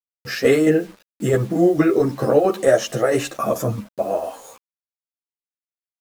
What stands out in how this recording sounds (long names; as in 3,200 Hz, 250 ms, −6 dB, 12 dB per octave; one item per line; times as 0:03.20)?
tremolo saw down 4.5 Hz, depth 50%
a quantiser's noise floor 8 bits, dither none
a shimmering, thickened sound